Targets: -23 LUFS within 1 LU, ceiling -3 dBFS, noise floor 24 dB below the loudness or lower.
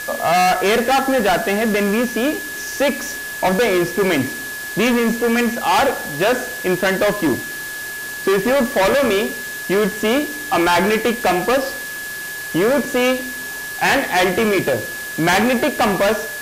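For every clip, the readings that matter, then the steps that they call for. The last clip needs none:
steady tone 1.7 kHz; tone level -27 dBFS; noise floor -29 dBFS; noise floor target -42 dBFS; loudness -18.0 LUFS; peak level -8.0 dBFS; loudness target -23.0 LUFS
-> band-stop 1.7 kHz, Q 30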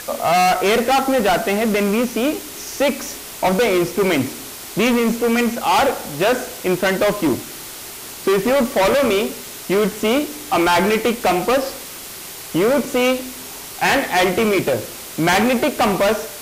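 steady tone not found; noise floor -34 dBFS; noise floor target -42 dBFS
-> noise reduction 8 dB, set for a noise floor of -34 dBFS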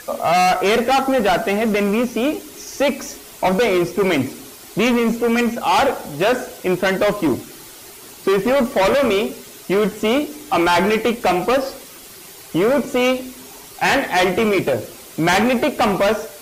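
noise floor -40 dBFS; noise floor target -42 dBFS
-> noise reduction 6 dB, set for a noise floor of -40 dBFS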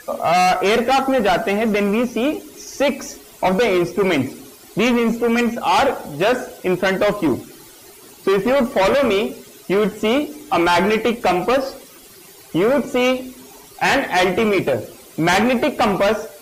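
noise floor -44 dBFS; loudness -18.0 LUFS; peak level -9.0 dBFS; loudness target -23.0 LUFS
-> trim -5 dB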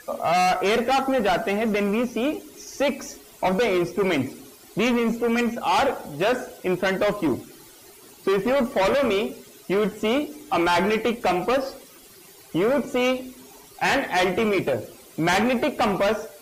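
loudness -23.0 LUFS; peak level -14.0 dBFS; noise floor -49 dBFS

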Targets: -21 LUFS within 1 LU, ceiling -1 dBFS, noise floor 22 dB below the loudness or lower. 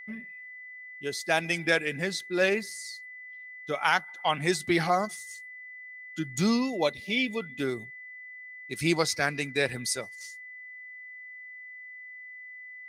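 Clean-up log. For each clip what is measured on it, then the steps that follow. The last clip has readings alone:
steady tone 2 kHz; tone level -42 dBFS; loudness -28.5 LUFS; peak level -9.5 dBFS; loudness target -21.0 LUFS
-> band-stop 2 kHz, Q 30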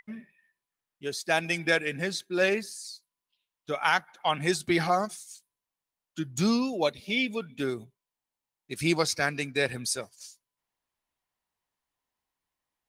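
steady tone not found; loudness -28.5 LUFS; peak level -10.0 dBFS; loudness target -21.0 LUFS
-> trim +7.5 dB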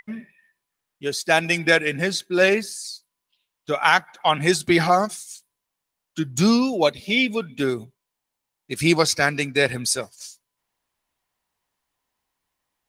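loudness -21.0 LUFS; peak level -2.5 dBFS; noise floor -83 dBFS

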